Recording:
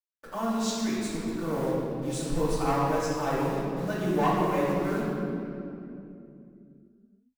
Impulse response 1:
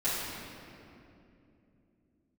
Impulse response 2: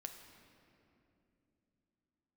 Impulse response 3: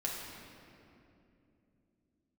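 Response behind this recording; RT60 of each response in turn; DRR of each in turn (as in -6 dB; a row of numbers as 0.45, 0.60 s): 1; 2.8, 2.8, 2.8 s; -14.0, 4.5, -4.0 dB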